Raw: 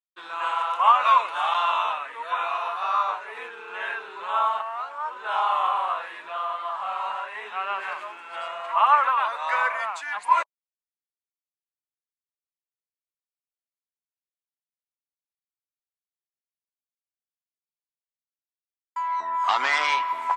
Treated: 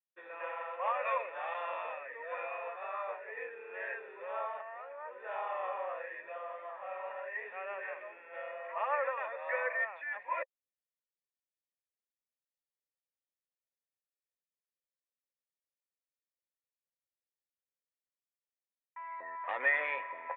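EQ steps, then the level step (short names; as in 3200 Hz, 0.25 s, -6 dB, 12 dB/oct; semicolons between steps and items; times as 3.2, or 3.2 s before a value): vocal tract filter e; +5.5 dB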